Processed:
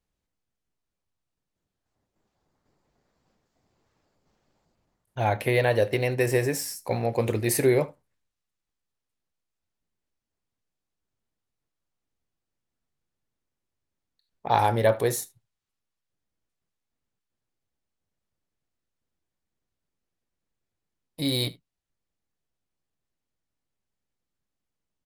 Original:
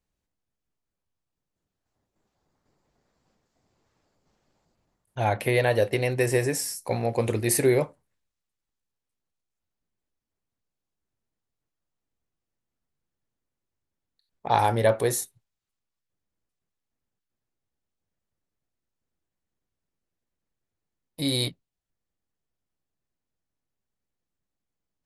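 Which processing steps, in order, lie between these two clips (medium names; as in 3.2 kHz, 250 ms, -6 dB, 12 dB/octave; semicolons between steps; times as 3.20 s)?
delay 75 ms -22 dB; decimation joined by straight lines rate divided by 2×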